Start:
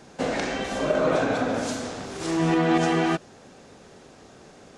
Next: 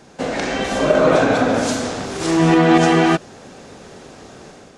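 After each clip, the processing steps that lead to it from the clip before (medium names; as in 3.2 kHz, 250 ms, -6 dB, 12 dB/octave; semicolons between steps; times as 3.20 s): level rider gain up to 7 dB; trim +2.5 dB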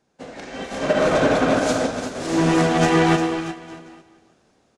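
saturation -10.5 dBFS, distortion -14 dB; on a send: bouncing-ball echo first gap 350 ms, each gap 0.8×, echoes 5; on the sum: upward expansion 2.5:1, over -29 dBFS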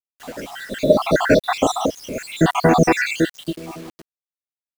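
random holes in the spectrogram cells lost 76%; bit crusher 8-bit; trim +7 dB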